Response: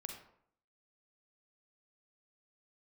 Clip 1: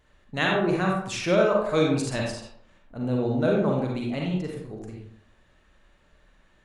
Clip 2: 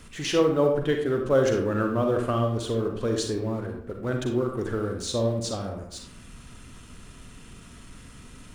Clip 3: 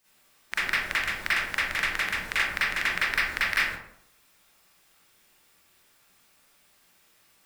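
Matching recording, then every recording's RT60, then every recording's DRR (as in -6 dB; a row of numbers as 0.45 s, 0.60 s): 2; 0.65 s, 0.65 s, 0.65 s; -1.5 dB, 3.0 dB, -11.0 dB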